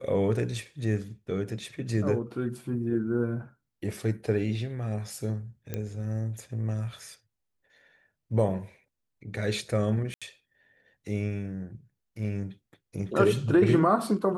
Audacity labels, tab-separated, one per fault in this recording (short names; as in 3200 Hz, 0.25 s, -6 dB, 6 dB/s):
5.740000	5.740000	pop -18 dBFS
10.140000	10.220000	gap 76 ms